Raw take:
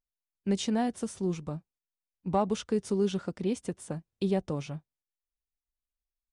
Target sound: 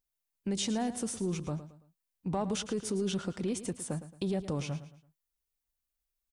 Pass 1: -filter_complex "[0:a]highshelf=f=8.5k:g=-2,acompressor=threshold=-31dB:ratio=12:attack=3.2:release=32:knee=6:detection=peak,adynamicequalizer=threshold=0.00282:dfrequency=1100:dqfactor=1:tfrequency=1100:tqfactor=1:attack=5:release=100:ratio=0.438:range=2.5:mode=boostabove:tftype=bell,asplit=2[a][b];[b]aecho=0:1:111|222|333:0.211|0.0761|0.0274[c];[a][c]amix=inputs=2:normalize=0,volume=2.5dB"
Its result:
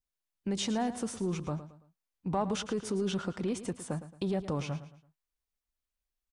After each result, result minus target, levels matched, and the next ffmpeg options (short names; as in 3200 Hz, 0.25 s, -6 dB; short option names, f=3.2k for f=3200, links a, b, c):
8000 Hz band -4.0 dB; 1000 Hz band +3.0 dB
-filter_complex "[0:a]highshelf=f=8.5k:g=8,acompressor=threshold=-31dB:ratio=12:attack=3.2:release=32:knee=6:detection=peak,adynamicequalizer=threshold=0.00282:dfrequency=1100:dqfactor=1:tfrequency=1100:tqfactor=1:attack=5:release=100:ratio=0.438:range=2.5:mode=boostabove:tftype=bell,asplit=2[a][b];[b]aecho=0:1:111|222|333:0.211|0.0761|0.0274[c];[a][c]amix=inputs=2:normalize=0,volume=2.5dB"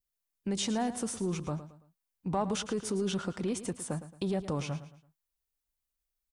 1000 Hz band +3.0 dB
-filter_complex "[0:a]highshelf=f=8.5k:g=8,acompressor=threshold=-31dB:ratio=12:attack=3.2:release=32:knee=6:detection=peak,asplit=2[a][b];[b]aecho=0:1:111|222|333:0.211|0.0761|0.0274[c];[a][c]amix=inputs=2:normalize=0,volume=2.5dB"